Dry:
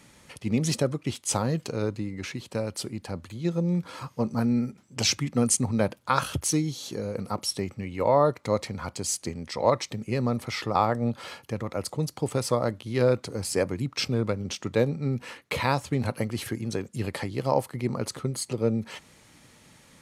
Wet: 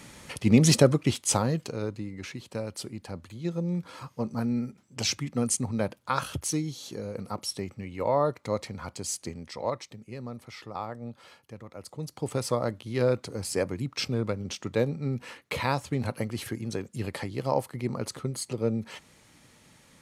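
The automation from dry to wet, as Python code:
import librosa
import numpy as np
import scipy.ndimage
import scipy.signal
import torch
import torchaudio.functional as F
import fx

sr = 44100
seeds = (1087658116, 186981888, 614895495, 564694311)

y = fx.gain(x, sr, db=fx.line((0.95, 6.5), (1.8, -4.0), (9.35, -4.0), (10.03, -12.5), (11.78, -12.5), (12.31, -2.5)))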